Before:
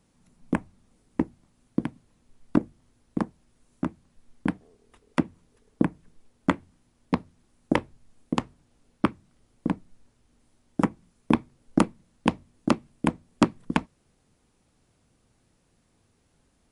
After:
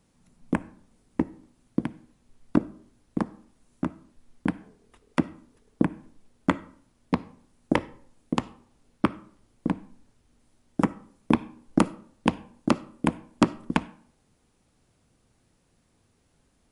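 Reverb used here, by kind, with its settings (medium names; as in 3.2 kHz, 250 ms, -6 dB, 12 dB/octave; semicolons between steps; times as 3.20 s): algorithmic reverb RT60 0.59 s, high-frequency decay 0.6×, pre-delay 15 ms, DRR 18.5 dB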